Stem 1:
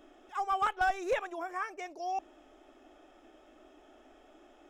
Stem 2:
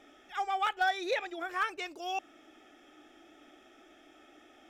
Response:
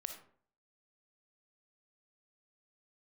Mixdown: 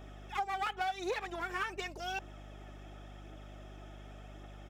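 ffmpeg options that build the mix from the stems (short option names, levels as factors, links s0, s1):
-filter_complex "[0:a]aeval=exprs='clip(val(0),-1,0.00562)':c=same,volume=1.33[s0];[1:a]aphaser=in_gain=1:out_gain=1:delay=3.5:decay=0.58:speed=0.9:type=triangular,adelay=1.8,volume=0.708[s1];[s0][s1]amix=inputs=2:normalize=0,highpass=370,aeval=exprs='val(0)+0.00355*(sin(2*PI*50*n/s)+sin(2*PI*2*50*n/s)/2+sin(2*PI*3*50*n/s)/3+sin(2*PI*4*50*n/s)/4+sin(2*PI*5*50*n/s)/5)':c=same,acompressor=threshold=0.0251:ratio=5"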